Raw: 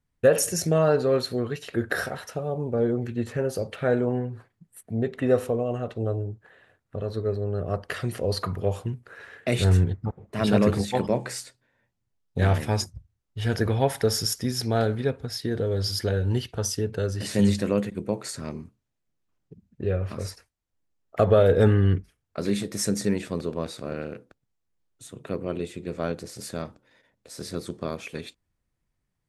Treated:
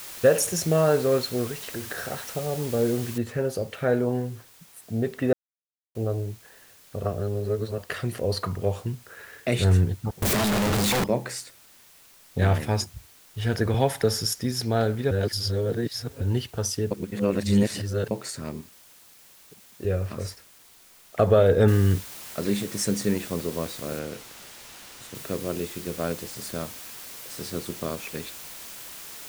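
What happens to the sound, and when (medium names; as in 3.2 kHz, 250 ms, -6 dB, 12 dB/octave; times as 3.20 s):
1.51–2.08 s: compression, threshold -30 dBFS
3.18 s: noise floor step -40 dB -64 dB
5.33–5.95 s: mute
7.03–7.78 s: reverse
8.46–9.09 s: low-pass 10 kHz
10.22–11.04 s: one-bit comparator
13.74–14.21 s: three bands compressed up and down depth 40%
15.11–16.21 s: reverse
16.91–18.11 s: reverse
18.61–19.85 s: tone controls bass -11 dB, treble +6 dB
21.68 s: noise floor step -54 dB -41 dB
23.99–25.15 s: treble shelf 8.5 kHz -9 dB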